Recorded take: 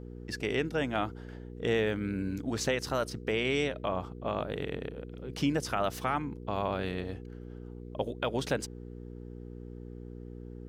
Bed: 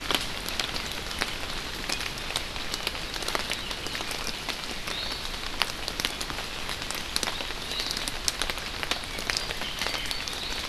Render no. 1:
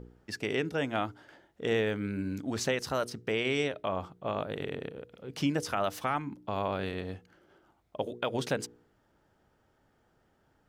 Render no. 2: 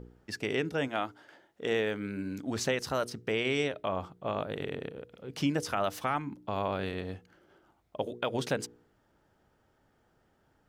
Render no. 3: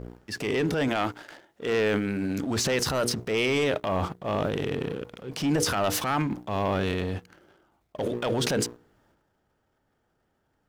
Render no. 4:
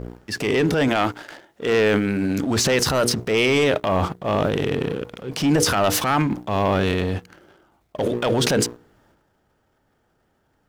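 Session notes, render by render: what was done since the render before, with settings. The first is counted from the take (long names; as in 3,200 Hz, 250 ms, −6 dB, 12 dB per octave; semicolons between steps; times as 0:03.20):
hum removal 60 Hz, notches 8
0:00.87–0:02.47: high-pass filter 340 Hz → 160 Hz 6 dB per octave
leveller curve on the samples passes 2; transient designer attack −5 dB, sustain +9 dB
level +6.5 dB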